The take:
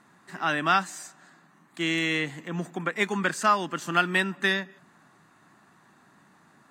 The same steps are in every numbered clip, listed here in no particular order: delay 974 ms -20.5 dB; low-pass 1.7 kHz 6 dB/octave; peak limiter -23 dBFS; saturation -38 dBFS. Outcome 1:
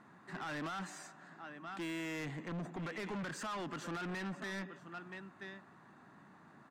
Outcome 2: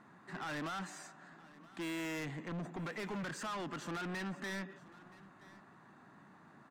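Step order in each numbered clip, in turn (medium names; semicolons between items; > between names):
delay > peak limiter > low-pass > saturation; low-pass > peak limiter > saturation > delay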